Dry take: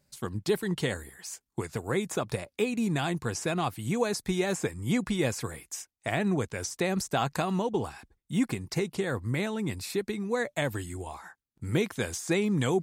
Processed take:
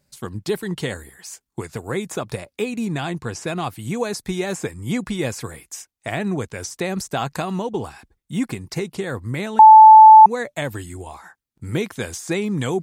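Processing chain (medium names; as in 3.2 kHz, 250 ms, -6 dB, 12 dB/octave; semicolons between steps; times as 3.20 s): 2.85–3.47 s: treble shelf 9.4 kHz -9 dB; 9.59–10.26 s: bleep 873 Hz -6 dBFS; trim +3.5 dB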